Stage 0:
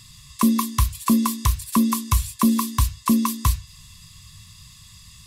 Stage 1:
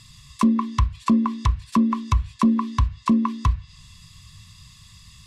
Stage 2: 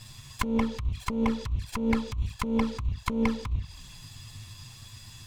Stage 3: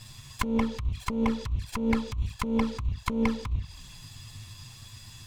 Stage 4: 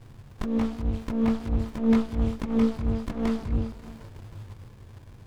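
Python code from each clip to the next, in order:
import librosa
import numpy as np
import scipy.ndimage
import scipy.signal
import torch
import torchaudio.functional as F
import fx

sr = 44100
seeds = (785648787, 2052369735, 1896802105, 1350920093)

y1 = fx.env_lowpass_down(x, sr, base_hz=1500.0, full_db=-15.5)
y1 = fx.high_shelf(y1, sr, hz=8800.0, db=-11.5)
y2 = fx.lower_of_two(y1, sr, delay_ms=1.2)
y2 = fx.env_flanger(y2, sr, rest_ms=10.3, full_db=-17.5)
y2 = fx.over_compress(y2, sr, threshold_db=-27.0, ratio=-1.0)
y3 = y2
y4 = fx.chorus_voices(y3, sr, voices=4, hz=0.45, base_ms=21, depth_ms=2.7, mix_pct=40)
y4 = fx.echo_stepped(y4, sr, ms=311, hz=260.0, octaves=0.7, feedback_pct=70, wet_db=-6)
y4 = fx.running_max(y4, sr, window=65)
y4 = y4 * 10.0 ** (5.0 / 20.0)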